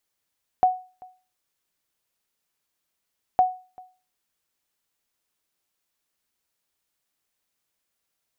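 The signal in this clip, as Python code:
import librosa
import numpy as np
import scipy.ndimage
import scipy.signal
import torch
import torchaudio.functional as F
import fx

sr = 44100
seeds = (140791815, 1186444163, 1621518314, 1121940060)

y = fx.sonar_ping(sr, hz=739.0, decay_s=0.35, every_s=2.76, pings=2, echo_s=0.39, echo_db=-26.0, level_db=-10.5)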